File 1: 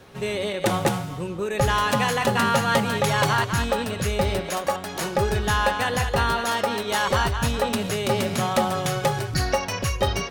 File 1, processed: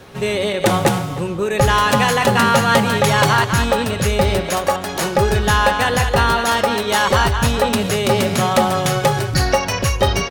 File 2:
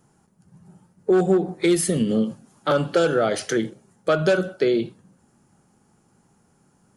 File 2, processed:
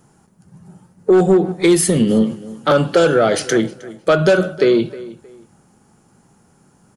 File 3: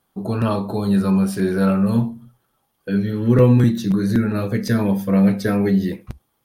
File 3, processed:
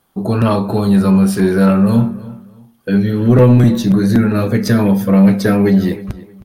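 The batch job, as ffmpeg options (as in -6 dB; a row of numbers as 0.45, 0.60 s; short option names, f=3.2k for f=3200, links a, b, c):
-filter_complex "[0:a]acontrast=90,asplit=2[a][b];[b]adelay=313,lowpass=f=3.7k:p=1,volume=-18dB,asplit=2[c][d];[d]adelay=313,lowpass=f=3.7k:p=1,volume=0.27[e];[a][c][e]amix=inputs=3:normalize=0"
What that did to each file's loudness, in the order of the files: +7.0, +6.5, +6.0 LU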